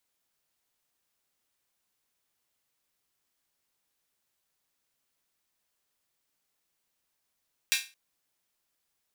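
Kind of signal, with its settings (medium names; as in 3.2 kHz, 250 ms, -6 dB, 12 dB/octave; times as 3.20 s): open hi-hat length 0.22 s, high-pass 2.3 kHz, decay 0.30 s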